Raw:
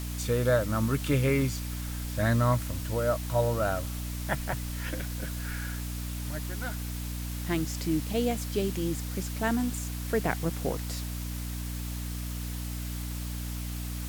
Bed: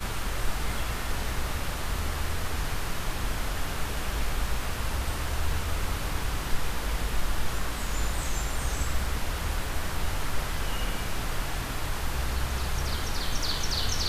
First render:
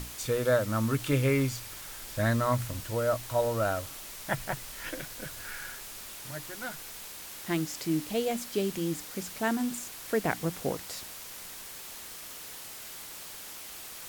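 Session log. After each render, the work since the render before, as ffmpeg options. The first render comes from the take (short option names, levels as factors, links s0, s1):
-af "bandreject=f=60:t=h:w=6,bandreject=f=120:t=h:w=6,bandreject=f=180:t=h:w=6,bandreject=f=240:t=h:w=6,bandreject=f=300:t=h:w=6"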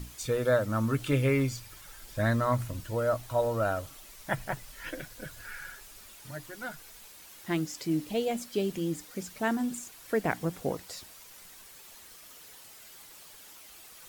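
-af "afftdn=nr=9:nf=-44"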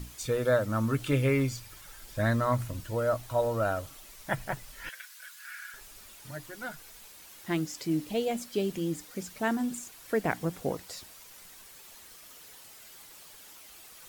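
-filter_complex "[0:a]asettb=1/sr,asplit=3[s0][s1][s2];[s0]atrim=end=4.894[s3];[s1]atrim=start=4.89:end=5.74,asetpts=PTS-STARTPTS,afade=t=in:d=0.004:c=qsin,afade=t=out:st=0.846:d=0.004:c=qsin,highpass=f=1200:w=0.5412,highpass=f=1200:w=1.3066[s4];[s2]atrim=start=5.736[s5];[s3][s4]acrossfade=d=0.004:c1=hsin:c2=qsin[s6];[s6][s5]acrossfade=d=0.004:c1=qsin:c2=hsin"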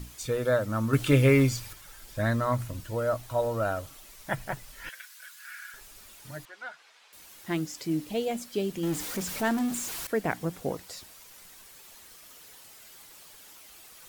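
-filter_complex "[0:a]asettb=1/sr,asplit=3[s0][s1][s2];[s0]atrim=end=0.934[s3];[s1]atrim=start=0.93:end=1.73,asetpts=PTS-STARTPTS,afade=t=in:d=0.004:c=qsin,afade=t=out:st=0.796:d=0.004:c=qsin,acontrast=46[s4];[s2]atrim=start=1.726[s5];[s3][s4]acrossfade=d=0.004:c1=hsin:c2=qsin[s6];[s6][s5]acrossfade=d=0.004:c1=qsin:c2=hsin,asettb=1/sr,asplit=3[s7][s8][s9];[s7]atrim=end=6.454[s10];[s8]atrim=start=6.45:end=7.13,asetpts=PTS-STARTPTS,afade=t=in:d=0.004:c=qsin,afade=t=out:st=0.676:d=0.004:c=qsin,highpass=700,lowpass=3800[s11];[s9]atrim=start=7.126[s12];[s10][s11]acrossfade=d=0.004:c1=hsin:c2=qsin[s13];[s13][s12]acrossfade=d=0.004:c1=qsin:c2=hsin,asettb=1/sr,asplit=3[s14][s15][s16];[s14]atrim=end=8.834[s17];[s15]atrim=start=8.83:end=10.07,asetpts=PTS-STARTPTS,afade=t=in:d=0.004:c=qsin,afade=t=out:st=1.236:d=0.004:c=qsin,aeval=exprs='val(0)+0.5*0.0251*sgn(val(0))':c=same[s18];[s16]atrim=start=10.066[s19];[s17][s18]acrossfade=d=0.004:c1=hsin:c2=qsin[s20];[s20][s19]acrossfade=d=0.004:c1=qsin:c2=hsin"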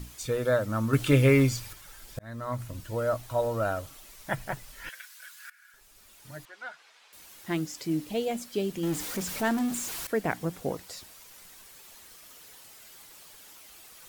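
-filter_complex "[0:a]asplit=3[s0][s1][s2];[s0]atrim=end=2.19,asetpts=PTS-STARTPTS,afade=t=out:st=2.186:d=0.004:c=hsin[s3];[s1]atrim=start=2.19:end=5.5,asetpts=PTS-STARTPTS,afade=t=in:d=0.95:c=qsin,afade=t=out:st=3.306:d=0.004:c=hsin:silence=0.105925[s4];[s2]atrim=start=5.5,asetpts=PTS-STARTPTS,afade=t=in:d=1.17:silence=0.105925[s5];[s3][s4][s5]concat=n=3:v=0:a=1"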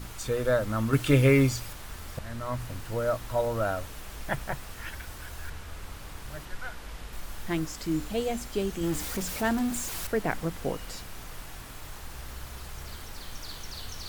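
-filter_complex "[1:a]volume=0.251[s0];[0:a][s0]amix=inputs=2:normalize=0"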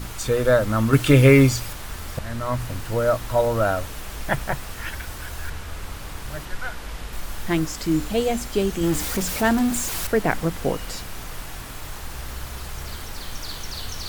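-af "volume=2.37,alimiter=limit=0.708:level=0:latency=1"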